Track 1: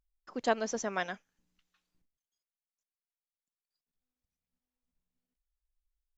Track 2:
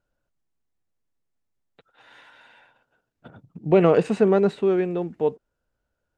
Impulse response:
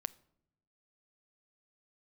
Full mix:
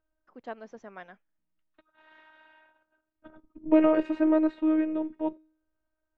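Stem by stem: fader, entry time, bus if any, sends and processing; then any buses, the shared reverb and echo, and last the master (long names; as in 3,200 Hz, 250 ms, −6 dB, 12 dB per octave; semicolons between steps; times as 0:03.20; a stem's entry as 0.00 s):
−10.5 dB, 0.00 s, no send, no processing
−1.5 dB, 0.00 s, no send, hum removal 420.6 Hz, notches 32; phases set to zero 312 Hz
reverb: not used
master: low-pass filter 2,300 Hz 12 dB per octave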